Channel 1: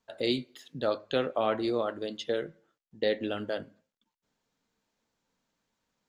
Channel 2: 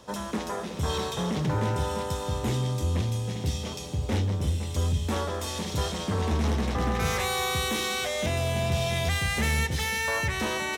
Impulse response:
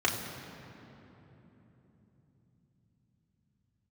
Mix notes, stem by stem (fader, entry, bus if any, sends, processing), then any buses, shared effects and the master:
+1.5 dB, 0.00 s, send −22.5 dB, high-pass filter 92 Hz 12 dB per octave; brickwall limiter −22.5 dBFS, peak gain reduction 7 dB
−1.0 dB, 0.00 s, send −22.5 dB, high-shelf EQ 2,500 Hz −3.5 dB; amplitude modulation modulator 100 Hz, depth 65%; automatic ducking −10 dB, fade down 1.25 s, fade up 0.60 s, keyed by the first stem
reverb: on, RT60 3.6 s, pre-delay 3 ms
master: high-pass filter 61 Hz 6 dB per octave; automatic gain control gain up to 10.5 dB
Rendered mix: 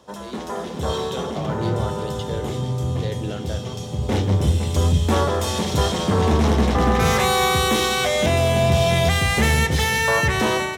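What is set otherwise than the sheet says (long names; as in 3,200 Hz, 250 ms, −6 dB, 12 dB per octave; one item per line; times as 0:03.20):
stem 1 +1.5 dB → −10.0 dB
stem 2: missing amplitude modulation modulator 100 Hz, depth 65%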